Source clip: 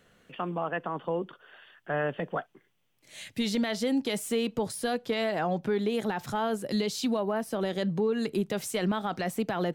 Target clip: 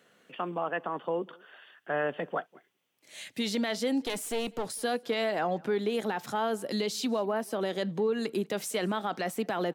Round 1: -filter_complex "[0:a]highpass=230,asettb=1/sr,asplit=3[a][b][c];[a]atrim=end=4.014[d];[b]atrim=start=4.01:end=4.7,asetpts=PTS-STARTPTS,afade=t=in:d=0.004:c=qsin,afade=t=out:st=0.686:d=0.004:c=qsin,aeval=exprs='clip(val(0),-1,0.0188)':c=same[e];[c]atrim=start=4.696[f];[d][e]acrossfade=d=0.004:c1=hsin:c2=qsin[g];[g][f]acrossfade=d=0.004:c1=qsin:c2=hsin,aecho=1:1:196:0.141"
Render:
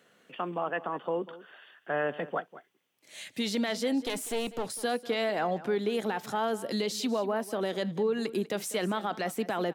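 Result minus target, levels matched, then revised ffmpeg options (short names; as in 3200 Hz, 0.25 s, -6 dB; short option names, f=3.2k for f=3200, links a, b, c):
echo-to-direct +9.5 dB
-filter_complex "[0:a]highpass=230,asettb=1/sr,asplit=3[a][b][c];[a]atrim=end=4.014[d];[b]atrim=start=4.01:end=4.7,asetpts=PTS-STARTPTS,afade=t=in:d=0.004:c=qsin,afade=t=out:st=0.686:d=0.004:c=qsin,aeval=exprs='clip(val(0),-1,0.0188)':c=same[e];[c]atrim=start=4.696[f];[d][e]acrossfade=d=0.004:c1=hsin:c2=qsin[g];[g][f]acrossfade=d=0.004:c1=qsin:c2=hsin,aecho=1:1:196:0.0473"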